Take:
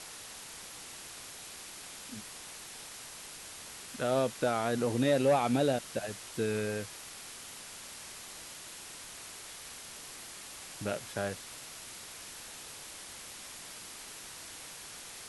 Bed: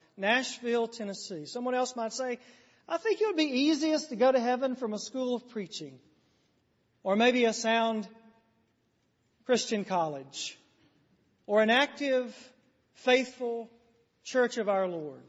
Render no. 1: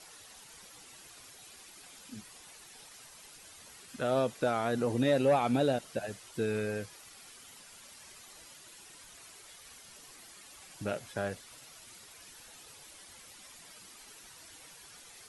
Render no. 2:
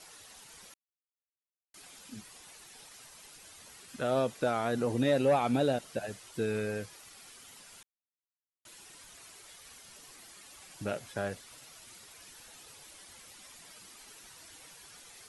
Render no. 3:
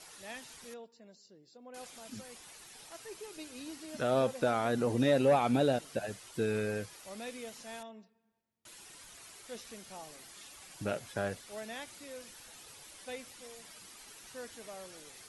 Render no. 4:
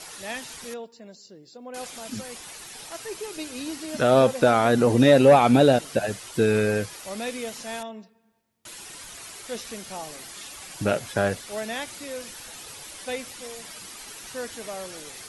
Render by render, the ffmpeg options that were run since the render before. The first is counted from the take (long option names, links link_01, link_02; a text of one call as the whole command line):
ffmpeg -i in.wav -af "afftdn=noise_reduction=10:noise_floor=-47" out.wav
ffmpeg -i in.wav -filter_complex "[0:a]asplit=5[link_01][link_02][link_03][link_04][link_05];[link_01]atrim=end=0.74,asetpts=PTS-STARTPTS,afade=type=out:start_time=0.736:duration=0.004:curve=hsin[link_06];[link_02]atrim=start=0.74:end=1.74,asetpts=PTS-STARTPTS,volume=0[link_07];[link_03]atrim=start=1.74:end=7.83,asetpts=PTS-STARTPTS,afade=type=in:duration=0.004:curve=hsin,afade=type=out:start_time=6.086:duration=0.004:curve=hsin[link_08];[link_04]atrim=start=7.83:end=8.65,asetpts=PTS-STARTPTS,volume=0[link_09];[link_05]atrim=start=8.65,asetpts=PTS-STARTPTS,afade=type=in:duration=0.004:curve=hsin[link_10];[link_06][link_07][link_08][link_09][link_10]concat=n=5:v=0:a=1" out.wav
ffmpeg -i in.wav -i bed.wav -filter_complex "[1:a]volume=-19.5dB[link_01];[0:a][link_01]amix=inputs=2:normalize=0" out.wav
ffmpeg -i in.wav -af "volume=11.5dB" out.wav